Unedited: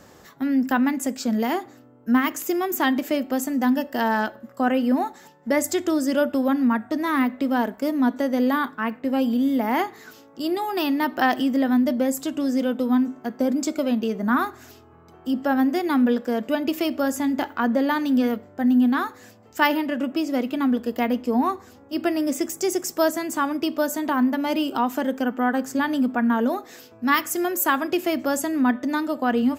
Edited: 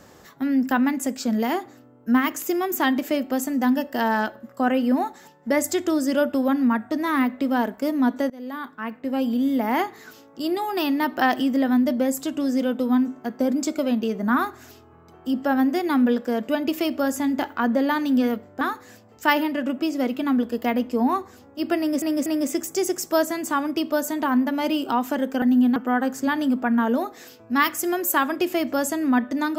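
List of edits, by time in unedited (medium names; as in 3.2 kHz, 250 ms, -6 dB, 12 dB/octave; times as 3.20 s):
8.30–9.86 s: fade in equal-power, from -23.5 dB
18.61–18.95 s: move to 25.28 s
22.12 s: stutter 0.24 s, 3 plays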